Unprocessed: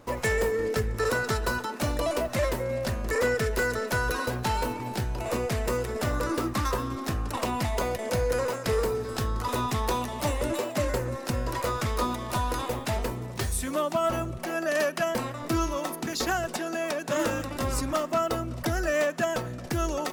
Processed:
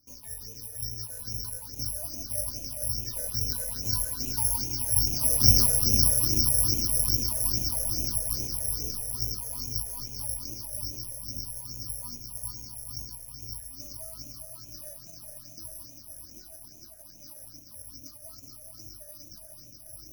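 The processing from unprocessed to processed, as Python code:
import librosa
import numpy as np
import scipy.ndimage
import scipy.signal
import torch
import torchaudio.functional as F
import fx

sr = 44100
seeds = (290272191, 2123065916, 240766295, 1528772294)

p1 = fx.rattle_buzz(x, sr, strikes_db=-39.0, level_db=-21.0)
p2 = fx.doppler_pass(p1, sr, speed_mps=6, closest_m=1.4, pass_at_s=5.55)
p3 = fx.graphic_eq_15(p2, sr, hz=(100, 250, 1000, 10000), db=(7, 6, 6, 10))
p4 = p3 + fx.echo_diffused(p3, sr, ms=483, feedback_pct=62, wet_db=-4.5, dry=0)
p5 = fx.rider(p4, sr, range_db=4, speed_s=2.0)
p6 = fx.tilt_shelf(p5, sr, db=9.5, hz=1400.0)
p7 = fx.room_shoebox(p6, sr, seeds[0], volume_m3=2200.0, walls='furnished', distance_m=2.7)
p8 = (np.kron(p7[::8], np.eye(8)[0]) * 8)[:len(p7)]
p9 = fx.phaser_stages(p8, sr, stages=6, low_hz=270.0, high_hz=1300.0, hz=2.4, feedback_pct=45)
y = F.gain(torch.from_numpy(p9), -11.5).numpy()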